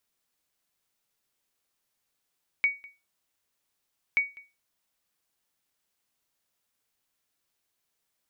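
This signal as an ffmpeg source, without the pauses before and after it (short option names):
-f lavfi -i "aevalsrc='0.158*(sin(2*PI*2250*mod(t,1.53))*exp(-6.91*mod(t,1.53)/0.26)+0.0668*sin(2*PI*2250*max(mod(t,1.53)-0.2,0))*exp(-6.91*max(mod(t,1.53)-0.2,0)/0.26))':d=3.06:s=44100"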